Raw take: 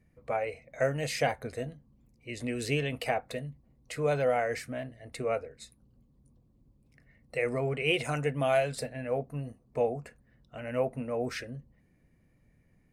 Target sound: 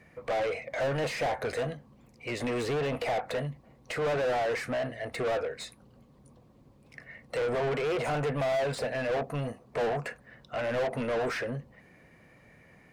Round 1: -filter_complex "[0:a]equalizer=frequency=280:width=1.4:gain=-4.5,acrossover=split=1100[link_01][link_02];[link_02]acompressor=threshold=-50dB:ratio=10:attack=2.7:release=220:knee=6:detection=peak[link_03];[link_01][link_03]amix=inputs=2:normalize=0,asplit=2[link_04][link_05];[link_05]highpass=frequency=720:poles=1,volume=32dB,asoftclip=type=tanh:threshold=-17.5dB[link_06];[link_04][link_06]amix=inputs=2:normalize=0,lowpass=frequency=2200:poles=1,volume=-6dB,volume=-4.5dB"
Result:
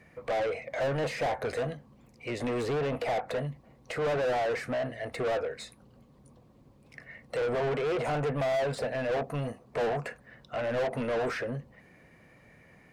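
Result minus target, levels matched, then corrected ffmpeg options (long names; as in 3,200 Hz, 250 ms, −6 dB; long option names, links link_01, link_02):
downward compressor: peak gain reduction +5.5 dB
-filter_complex "[0:a]equalizer=frequency=280:width=1.4:gain=-4.5,acrossover=split=1100[link_01][link_02];[link_02]acompressor=threshold=-44dB:ratio=10:attack=2.7:release=220:knee=6:detection=peak[link_03];[link_01][link_03]amix=inputs=2:normalize=0,asplit=2[link_04][link_05];[link_05]highpass=frequency=720:poles=1,volume=32dB,asoftclip=type=tanh:threshold=-17.5dB[link_06];[link_04][link_06]amix=inputs=2:normalize=0,lowpass=frequency=2200:poles=1,volume=-6dB,volume=-4.5dB"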